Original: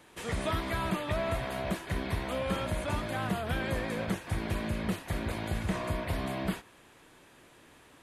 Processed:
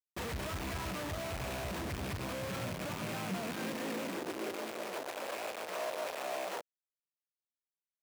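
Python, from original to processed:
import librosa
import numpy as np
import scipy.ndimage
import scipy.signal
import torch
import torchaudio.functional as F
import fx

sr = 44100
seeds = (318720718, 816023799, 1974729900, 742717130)

y = fx.rattle_buzz(x, sr, strikes_db=-38.0, level_db=-26.0)
y = fx.schmitt(y, sr, flips_db=-42.5)
y = fx.filter_sweep_highpass(y, sr, from_hz=68.0, to_hz=550.0, start_s=1.75, end_s=5.15, q=2.1)
y = y * 10.0 ** (-6.0 / 20.0)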